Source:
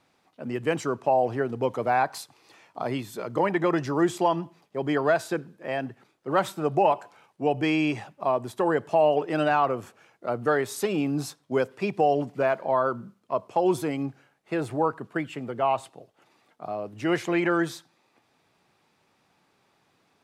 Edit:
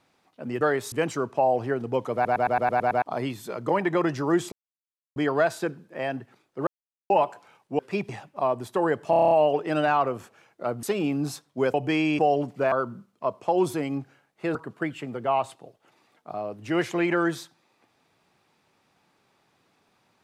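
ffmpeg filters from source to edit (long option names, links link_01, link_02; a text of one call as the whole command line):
ffmpeg -i in.wav -filter_complex "[0:a]asplit=29[link_01][link_02][link_03][link_04][link_05][link_06][link_07][link_08][link_09][link_10][link_11][link_12][link_13][link_14][link_15][link_16][link_17][link_18][link_19][link_20][link_21][link_22][link_23][link_24][link_25][link_26][link_27][link_28][link_29];[link_01]atrim=end=0.612[link_30];[link_02]atrim=start=10.458:end=10.772[link_31];[link_03]atrim=start=0.608:end=1.942[link_32];[link_04]atrim=start=1.828:end=1.942[link_33];[link_05]atrim=start=1.828:end=1.942[link_34];[link_06]atrim=start=1.828:end=1.942[link_35];[link_07]atrim=start=1.828:end=1.942[link_36];[link_08]atrim=start=1.828:end=1.942[link_37];[link_09]atrim=start=1.828:end=1.942[link_38];[link_10]atrim=start=1.828:end=1.942[link_39];[link_11]atrim=start=2.708:end=4.21,asetpts=PTS-STARTPTS,afade=type=out:start_time=1.498:duration=0.004:curve=hsin[link_40];[link_12]atrim=start=4.21:end=4.85,asetpts=PTS-STARTPTS,volume=0[link_41];[link_13]atrim=start=4.85:end=6.36,asetpts=PTS-STARTPTS,afade=type=in:duration=0.004:curve=hsin,afade=type=out:start_time=1.506:duration=0.004:curve=hsin[link_42];[link_14]atrim=start=6.36:end=6.79,asetpts=PTS-STARTPTS,volume=0[link_43];[link_15]atrim=start=6.79:end=7.482,asetpts=PTS-STARTPTS,afade=type=in:duration=0.004:curve=hsin[link_44];[link_16]atrim=start=11.678:end=11.982[link_45];[link_17]atrim=start=7.928:end=8.972[link_46];[link_18]atrim=start=8.938:end=8.972[link_47];[link_19]atrim=start=8.938:end=8.972[link_48];[link_20]atrim=start=8.938:end=8.972[link_49];[link_21]atrim=start=8.938:end=8.972[link_50];[link_22]atrim=start=8.938:end=8.972[link_51];[link_23]atrim=start=8.938:end=8.972[link_52];[link_24]atrim=start=8.938:end=10.462[link_53];[link_25]atrim=start=10.768:end=11.682[link_54];[link_26]atrim=start=7.478:end=7.932[link_55];[link_27]atrim=start=11.978:end=12.512[link_56];[link_28]atrim=start=12.798:end=14.632[link_57];[link_29]atrim=start=14.888[link_58];[link_30][link_31]acrossfade=duration=0.004:curve1=hsin:curve2=hsin[link_59];[link_59][link_32]acrossfade=duration=0.004:curve1=hsin:curve2=hsin[link_60];[link_60][link_33]acrossfade=duration=0.004:curve1=hsin:curve2=hsin[link_61];[link_61][link_34]acrossfade=duration=0.004:curve1=hsin:curve2=hsin[link_62];[link_62][link_35]acrossfade=duration=0.004:curve1=hsin:curve2=hsin[link_63];[link_63][link_36]acrossfade=duration=0.004:curve1=hsin:curve2=hsin[link_64];[link_64][link_37]acrossfade=duration=0.004:curve1=hsin:curve2=hsin[link_65];[link_65][link_38]acrossfade=duration=0.004:curve1=hsin:curve2=hsin[link_66];[link_66][link_39]acrossfade=duration=0.004:curve1=hsin:curve2=hsin[link_67];[link_40][link_41][link_42][link_43][link_44]concat=n=5:v=0:a=1[link_68];[link_67][link_68]acrossfade=duration=0.004:curve1=hsin:curve2=hsin[link_69];[link_69][link_45]acrossfade=duration=0.004:curve1=hsin:curve2=hsin[link_70];[link_70][link_46]acrossfade=duration=0.004:curve1=hsin:curve2=hsin[link_71];[link_71][link_47]acrossfade=duration=0.004:curve1=hsin:curve2=hsin[link_72];[link_72][link_48]acrossfade=duration=0.004:curve1=hsin:curve2=hsin[link_73];[link_73][link_49]acrossfade=duration=0.004:curve1=hsin:curve2=hsin[link_74];[link_74][link_50]acrossfade=duration=0.004:curve1=hsin:curve2=hsin[link_75];[link_75][link_51]acrossfade=duration=0.004:curve1=hsin:curve2=hsin[link_76];[link_76][link_52]acrossfade=duration=0.004:curve1=hsin:curve2=hsin[link_77];[link_77][link_53]acrossfade=duration=0.004:curve1=hsin:curve2=hsin[link_78];[link_78][link_54]acrossfade=duration=0.004:curve1=hsin:curve2=hsin[link_79];[link_79][link_55]acrossfade=duration=0.004:curve1=hsin:curve2=hsin[link_80];[link_80][link_56]acrossfade=duration=0.004:curve1=hsin:curve2=hsin[link_81];[link_81][link_57]acrossfade=duration=0.004:curve1=hsin:curve2=hsin[link_82];[link_82][link_58]acrossfade=duration=0.004:curve1=hsin:curve2=hsin" out.wav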